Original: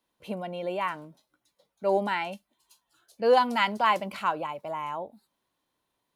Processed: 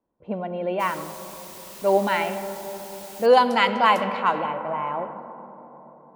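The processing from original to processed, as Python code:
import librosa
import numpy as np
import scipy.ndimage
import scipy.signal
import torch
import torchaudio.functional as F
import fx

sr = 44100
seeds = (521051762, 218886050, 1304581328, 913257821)

y = fx.rev_freeverb(x, sr, rt60_s=5.0, hf_ratio=0.4, predelay_ms=25, drr_db=8.5)
y = fx.env_lowpass(y, sr, base_hz=740.0, full_db=-19.5)
y = fx.quant_dither(y, sr, seeds[0], bits=8, dither='triangular', at=(0.79, 3.25), fade=0.02)
y = F.gain(torch.from_numpy(y), 5.0).numpy()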